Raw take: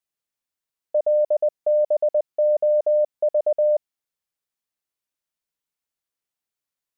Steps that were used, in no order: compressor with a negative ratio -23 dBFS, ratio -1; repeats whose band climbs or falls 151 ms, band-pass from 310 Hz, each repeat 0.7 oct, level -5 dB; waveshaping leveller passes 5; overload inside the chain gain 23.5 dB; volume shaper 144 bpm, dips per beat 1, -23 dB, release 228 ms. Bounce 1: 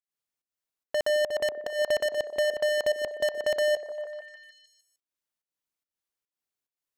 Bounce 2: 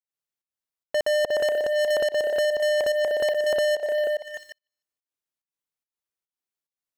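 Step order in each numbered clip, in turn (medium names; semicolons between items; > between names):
waveshaping leveller > compressor with a negative ratio > volume shaper > overload inside the chain > repeats whose band climbs or falls; compressor with a negative ratio > overload inside the chain > repeats whose band climbs or falls > volume shaper > waveshaping leveller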